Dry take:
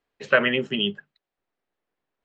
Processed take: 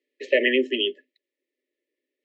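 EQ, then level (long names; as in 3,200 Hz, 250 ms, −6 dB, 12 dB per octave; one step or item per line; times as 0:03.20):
Chebyshev high-pass with heavy ripple 250 Hz, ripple 6 dB
linear-phase brick-wall band-stop 620–1,700 Hz
high-shelf EQ 4,400 Hz −8 dB
+8.0 dB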